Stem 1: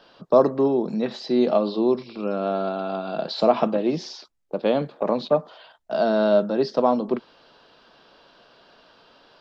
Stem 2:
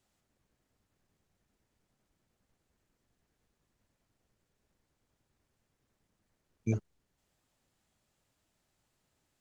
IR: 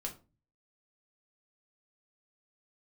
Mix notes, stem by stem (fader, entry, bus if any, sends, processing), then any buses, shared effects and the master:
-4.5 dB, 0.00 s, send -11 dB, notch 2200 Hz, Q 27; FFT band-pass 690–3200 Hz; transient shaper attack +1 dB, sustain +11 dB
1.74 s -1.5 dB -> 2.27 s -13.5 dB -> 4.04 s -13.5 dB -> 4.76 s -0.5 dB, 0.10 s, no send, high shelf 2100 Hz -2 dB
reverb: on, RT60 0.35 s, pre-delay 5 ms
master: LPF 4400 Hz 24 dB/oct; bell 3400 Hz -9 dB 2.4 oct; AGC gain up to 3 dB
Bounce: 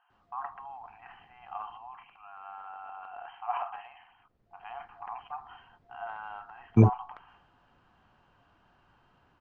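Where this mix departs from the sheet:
stem 1 -4.5 dB -> -12.0 dB; stem 2 -1.5 dB -> +9.0 dB

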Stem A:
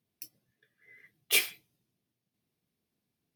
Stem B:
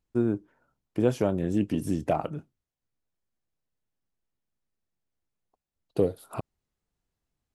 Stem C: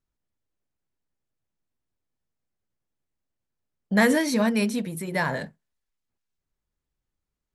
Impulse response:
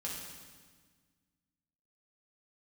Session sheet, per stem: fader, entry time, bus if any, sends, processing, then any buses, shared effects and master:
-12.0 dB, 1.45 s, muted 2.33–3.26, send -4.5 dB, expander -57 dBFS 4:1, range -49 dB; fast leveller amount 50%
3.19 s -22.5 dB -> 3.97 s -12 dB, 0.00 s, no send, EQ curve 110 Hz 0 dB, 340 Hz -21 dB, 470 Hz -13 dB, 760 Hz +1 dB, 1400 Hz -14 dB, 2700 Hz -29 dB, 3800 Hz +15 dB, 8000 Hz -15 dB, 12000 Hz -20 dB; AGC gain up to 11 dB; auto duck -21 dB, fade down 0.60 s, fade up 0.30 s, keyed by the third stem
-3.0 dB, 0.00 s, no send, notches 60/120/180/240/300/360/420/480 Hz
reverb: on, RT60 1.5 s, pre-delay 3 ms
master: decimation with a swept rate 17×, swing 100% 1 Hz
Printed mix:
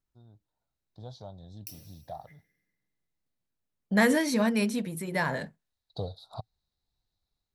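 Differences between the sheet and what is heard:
stem C: missing notches 60/120/180/240/300/360/420/480 Hz; master: missing decimation with a swept rate 17×, swing 100% 1 Hz

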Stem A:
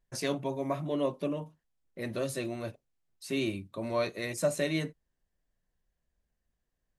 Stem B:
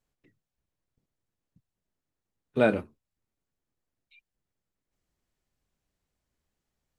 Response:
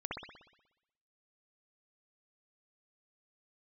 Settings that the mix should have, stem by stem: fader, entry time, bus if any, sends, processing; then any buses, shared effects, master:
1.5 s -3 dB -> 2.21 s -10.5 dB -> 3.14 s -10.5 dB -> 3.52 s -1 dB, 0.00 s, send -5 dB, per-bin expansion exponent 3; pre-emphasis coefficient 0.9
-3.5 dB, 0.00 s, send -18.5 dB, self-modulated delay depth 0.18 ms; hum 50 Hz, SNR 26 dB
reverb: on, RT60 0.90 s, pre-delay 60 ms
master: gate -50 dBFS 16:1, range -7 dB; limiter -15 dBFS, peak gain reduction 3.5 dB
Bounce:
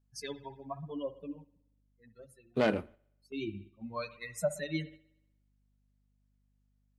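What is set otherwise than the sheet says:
stem A: missing pre-emphasis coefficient 0.9; reverb return -10.0 dB

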